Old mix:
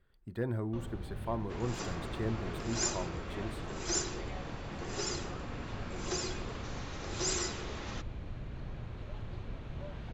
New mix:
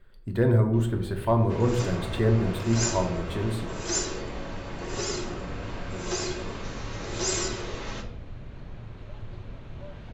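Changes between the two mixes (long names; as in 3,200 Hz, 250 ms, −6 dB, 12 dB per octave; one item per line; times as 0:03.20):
speech +7.5 dB
second sound: remove high-pass filter 140 Hz
reverb: on, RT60 0.75 s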